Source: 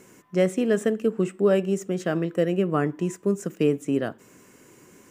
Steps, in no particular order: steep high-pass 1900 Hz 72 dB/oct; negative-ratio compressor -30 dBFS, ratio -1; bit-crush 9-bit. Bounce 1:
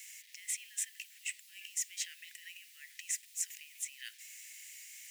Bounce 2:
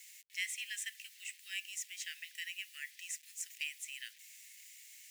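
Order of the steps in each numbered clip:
negative-ratio compressor > bit-crush > steep high-pass; bit-crush > steep high-pass > negative-ratio compressor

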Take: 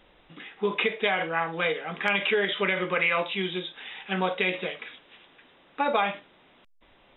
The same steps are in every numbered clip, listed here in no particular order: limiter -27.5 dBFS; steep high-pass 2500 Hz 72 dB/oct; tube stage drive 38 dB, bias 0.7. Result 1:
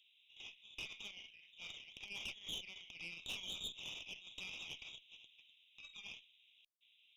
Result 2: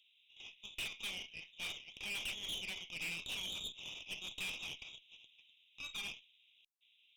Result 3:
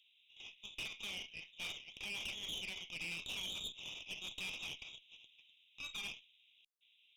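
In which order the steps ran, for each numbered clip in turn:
limiter > steep high-pass > tube stage; steep high-pass > tube stage > limiter; steep high-pass > limiter > tube stage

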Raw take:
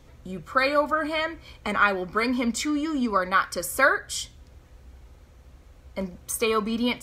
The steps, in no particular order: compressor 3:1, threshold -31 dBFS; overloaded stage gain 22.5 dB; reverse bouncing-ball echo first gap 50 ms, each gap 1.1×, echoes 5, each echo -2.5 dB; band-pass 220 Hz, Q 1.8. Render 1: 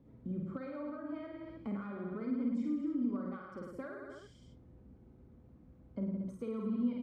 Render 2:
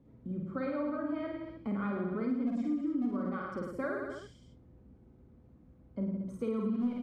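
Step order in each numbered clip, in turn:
reverse bouncing-ball echo > compressor > overloaded stage > band-pass; band-pass > overloaded stage > reverse bouncing-ball echo > compressor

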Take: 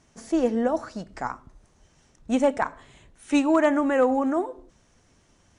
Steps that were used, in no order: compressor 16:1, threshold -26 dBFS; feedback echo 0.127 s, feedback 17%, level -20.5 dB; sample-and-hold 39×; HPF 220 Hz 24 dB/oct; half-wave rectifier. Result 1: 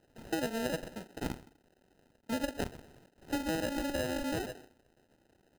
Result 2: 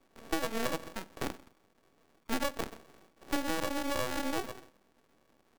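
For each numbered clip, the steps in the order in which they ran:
half-wave rectifier > feedback echo > compressor > HPF > sample-and-hold; feedback echo > sample-and-hold > HPF > half-wave rectifier > compressor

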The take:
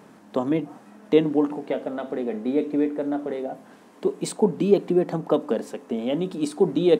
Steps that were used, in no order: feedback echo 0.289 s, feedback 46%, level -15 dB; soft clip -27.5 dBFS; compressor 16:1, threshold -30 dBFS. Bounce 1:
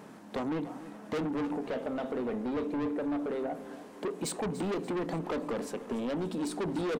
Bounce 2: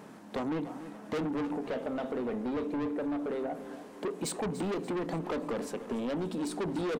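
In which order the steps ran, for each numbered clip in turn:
soft clip > compressor > feedback echo; soft clip > feedback echo > compressor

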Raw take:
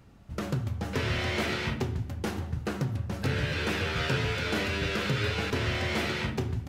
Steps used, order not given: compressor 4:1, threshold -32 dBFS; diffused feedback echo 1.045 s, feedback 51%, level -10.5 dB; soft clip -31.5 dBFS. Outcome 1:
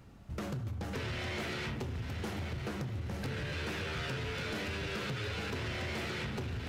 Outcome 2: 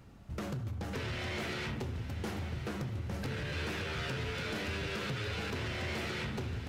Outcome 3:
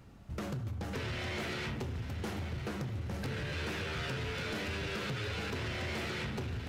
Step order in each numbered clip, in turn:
diffused feedback echo > compressor > soft clip; compressor > soft clip > diffused feedback echo; compressor > diffused feedback echo > soft clip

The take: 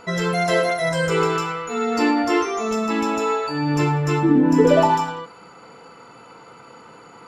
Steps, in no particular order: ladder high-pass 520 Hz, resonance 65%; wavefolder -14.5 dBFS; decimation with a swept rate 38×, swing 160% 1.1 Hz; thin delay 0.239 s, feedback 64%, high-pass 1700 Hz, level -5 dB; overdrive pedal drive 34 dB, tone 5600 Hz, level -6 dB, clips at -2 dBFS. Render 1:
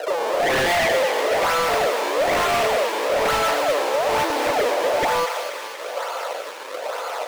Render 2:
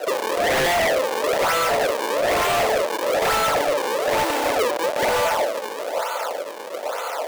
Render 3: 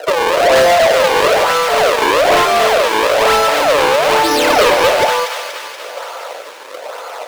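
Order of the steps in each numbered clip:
decimation with a swept rate > overdrive pedal > ladder high-pass > wavefolder > thin delay; thin delay > overdrive pedal > decimation with a swept rate > ladder high-pass > wavefolder; decimation with a swept rate > ladder high-pass > wavefolder > overdrive pedal > thin delay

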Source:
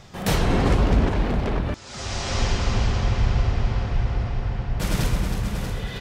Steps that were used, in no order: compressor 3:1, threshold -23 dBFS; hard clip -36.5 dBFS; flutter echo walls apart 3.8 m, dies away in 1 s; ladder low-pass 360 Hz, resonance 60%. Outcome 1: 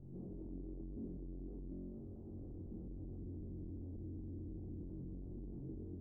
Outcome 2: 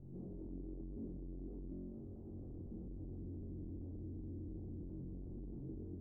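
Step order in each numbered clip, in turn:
flutter echo > compressor > hard clip > ladder low-pass; compressor > flutter echo > hard clip > ladder low-pass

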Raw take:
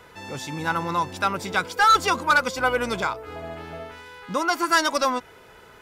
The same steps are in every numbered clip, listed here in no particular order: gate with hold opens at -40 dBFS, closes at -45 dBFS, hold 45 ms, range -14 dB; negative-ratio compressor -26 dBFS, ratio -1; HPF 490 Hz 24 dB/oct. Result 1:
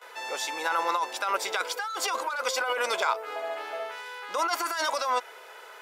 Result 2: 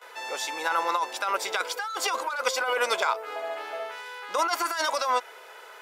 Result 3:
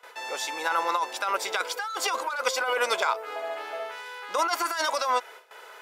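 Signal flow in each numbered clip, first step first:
gate with hold > negative-ratio compressor > HPF; gate with hold > HPF > negative-ratio compressor; HPF > gate with hold > negative-ratio compressor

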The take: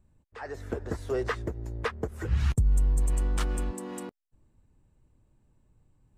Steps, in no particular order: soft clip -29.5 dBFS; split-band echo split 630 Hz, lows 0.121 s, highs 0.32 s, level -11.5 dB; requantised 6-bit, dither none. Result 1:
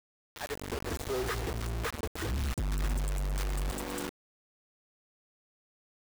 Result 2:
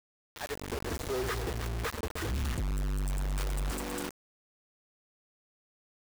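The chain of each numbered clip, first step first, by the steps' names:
soft clip > split-band echo > requantised; split-band echo > soft clip > requantised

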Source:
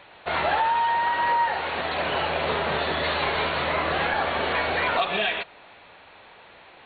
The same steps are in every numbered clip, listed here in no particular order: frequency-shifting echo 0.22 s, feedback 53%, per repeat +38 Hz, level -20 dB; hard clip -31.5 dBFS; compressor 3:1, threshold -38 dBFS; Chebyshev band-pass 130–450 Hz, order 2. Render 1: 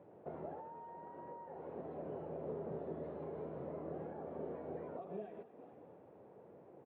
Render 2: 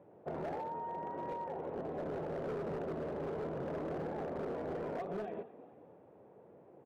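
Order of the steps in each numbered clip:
frequency-shifting echo > compressor > Chebyshev band-pass > hard clip; frequency-shifting echo > Chebyshev band-pass > hard clip > compressor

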